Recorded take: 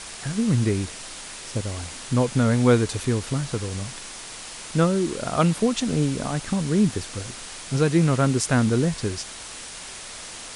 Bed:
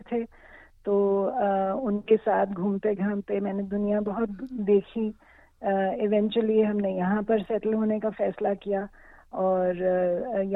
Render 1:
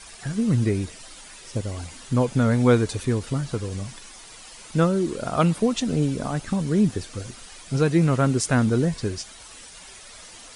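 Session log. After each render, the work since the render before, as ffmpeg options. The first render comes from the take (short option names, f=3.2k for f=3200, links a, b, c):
-af "afftdn=nr=10:nf=-38"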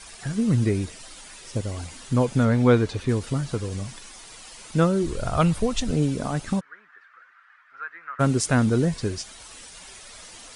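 -filter_complex "[0:a]asettb=1/sr,asplit=3[a][b][c];[a]atrim=end=2.454[d];[b]atrim=start=2.45:end=3.09,asetpts=PTS-STARTPTS,afade=t=in:d=0.004:c=qsin,afade=t=out:st=0.636:d=0.004:c=qsin,acrossover=split=5100[e][f];[f]acompressor=threshold=-53dB:ratio=4:attack=1:release=60[g];[e][g]amix=inputs=2:normalize=0[h];[c]atrim=start=3.086[i];[d][h]acrossfade=d=0.004:c1=hsin:c2=qsin[j];[j][i]acrossfade=d=0.004:c1=qsin:c2=hsin,asplit=3[k][l][m];[k]afade=t=out:st=5.02:d=0.02[n];[l]asubboost=boost=10:cutoff=75,afade=t=in:st=5.02:d=0.02,afade=t=out:st=5.9:d=0.02[o];[m]afade=t=in:st=5.9:d=0.02[p];[n][o][p]amix=inputs=3:normalize=0,asplit=3[q][r][s];[q]afade=t=out:st=6.59:d=0.02[t];[r]asuperpass=centerf=1500:order=4:qfactor=2.4,afade=t=in:st=6.59:d=0.02,afade=t=out:st=8.19:d=0.02[u];[s]afade=t=in:st=8.19:d=0.02[v];[t][u][v]amix=inputs=3:normalize=0"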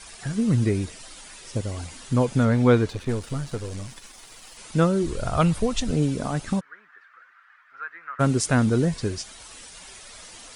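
-filter_complex "[0:a]asettb=1/sr,asplit=3[a][b][c];[a]atrim=end=2.894[d];[b]atrim=start=2.89:end=4.57,asetpts=PTS-STARTPTS,afade=t=in:d=0.004:c=qsin,afade=t=out:st=1.676:d=0.004:c=qsin,aeval=exprs='if(lt(val(0),0),0.447*val(0),val(0))':c=same[e];[c]atrim=start=4.566[f];[d][e]acrossfade=d=0.004:c1=hsin:c2=qsin[g];[g][f]acrossfade=d=0.004:c1=qsin:c2=hsin"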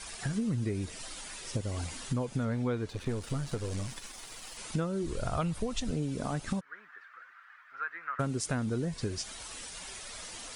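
-af "acompressor=threshold=-30dB:ratio=5"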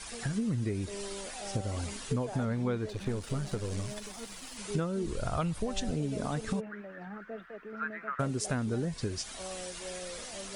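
-filter_complex "[1:a]volume=-19dB[a];[0:a][a]amix=inputs=2:normalize=0"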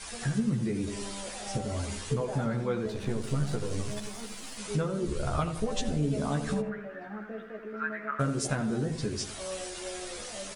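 -filter_complex "[0:a]asplit=2[a][b];[b]adelay=14,volume=-2.5dB[c];[a][c]amix=inputs=2:normalize=0,asplit=2[d][e];[e]adelay=85,lowpass=f=1.5k:p=1,volume=-8dB,asplit=2[f][g];[g]adelay=85,lowpass=f=1.5k:p=1,volume=0.53,asplit=2[h][i];[i]adelay=85,lowpass=f=1.5k:p=1,volume=0.53,asplit=2[j][k];[k]adelay=85,lowpass=f=1.5k:p=1,volume=0.53,asplit=2[l][m];[m]adelay=85,lowpass=f=1.5k:p=1,volume=0.53,asplit=2[n][o];[o]adelay=85,lowpass=f=1.5k:p=1,volume=0.53[p];[f][h][j][l][n][p]amix=inputs=6:normalize=0[q];[d][q]amix=inputs=2:normalize=0"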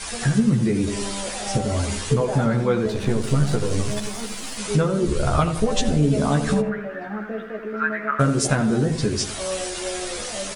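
-af "volume=10dB"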